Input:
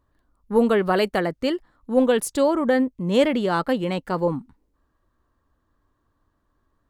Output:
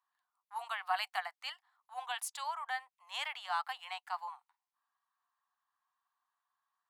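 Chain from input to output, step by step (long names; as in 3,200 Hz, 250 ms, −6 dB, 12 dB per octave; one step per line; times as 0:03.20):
Chebyshev high-pass with heavy ripple 720 Hz, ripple 3 dB
level −8 dB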